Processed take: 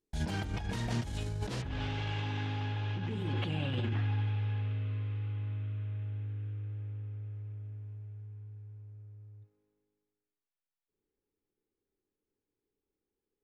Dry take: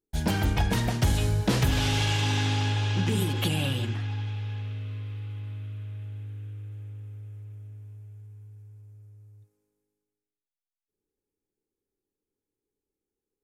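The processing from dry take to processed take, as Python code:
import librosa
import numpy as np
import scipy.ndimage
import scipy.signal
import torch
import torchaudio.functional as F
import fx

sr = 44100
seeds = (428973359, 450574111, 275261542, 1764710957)

y = fx.lowpass(x, sr, hz=fx.steps((0.0, 8600.0), (1.62, 2700.0)), slope=12)
y = fx.over_compress(y, sr, threshold_db=-30.0, ratio=-1.0)
y = y * 10.0 ** (-3.5 / 20.0)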